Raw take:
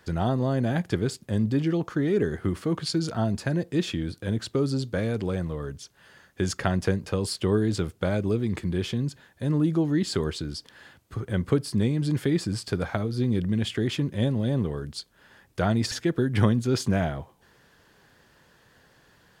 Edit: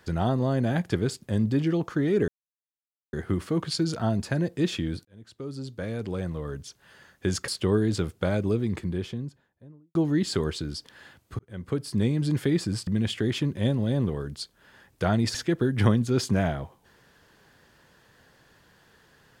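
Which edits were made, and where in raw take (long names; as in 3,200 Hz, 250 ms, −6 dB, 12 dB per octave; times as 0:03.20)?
0:02.28: splice in silence 0.85 s
0:04.20–0:05.76: fade in
0:06.63–0:07.28: remove
0:08.25–0:09.75: fade out and dull
0:11.19–0:11.86: fade in
0:12.67–0:13.44: remove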